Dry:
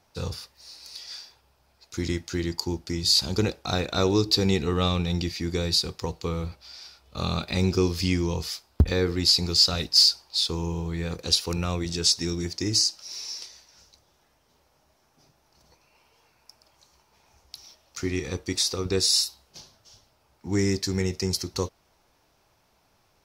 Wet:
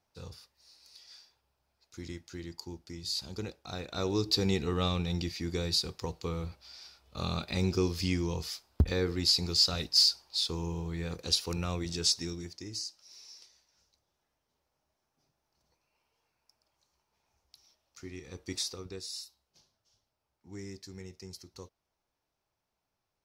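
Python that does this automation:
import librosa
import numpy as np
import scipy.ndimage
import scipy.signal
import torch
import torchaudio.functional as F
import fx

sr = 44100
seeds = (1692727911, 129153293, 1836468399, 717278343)

y = fx.gain(x, sr, db=fx.line((3.7, -14.0), (4.32, -6.0), (12.12, -6.0), (12.68, -16.0), (18.27, -16.0), (18.55, -8.0), (19.02, -19.5)))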